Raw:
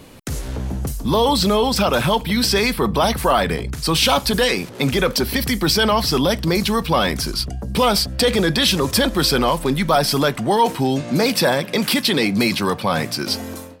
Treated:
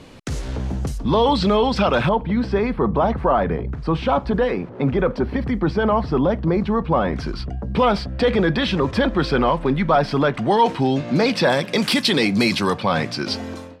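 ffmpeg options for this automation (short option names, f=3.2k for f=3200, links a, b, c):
-af "asetnsamples=n=441:p=0,asendcmd='0.98 lowpass f 3100;2.09 lowpass f 1200;7.13 lowpass f 2200;10.34 lowpass f 3900;11.5 lowpass f 7900;12.78 lowpass f 4500',lowpass=6.2k"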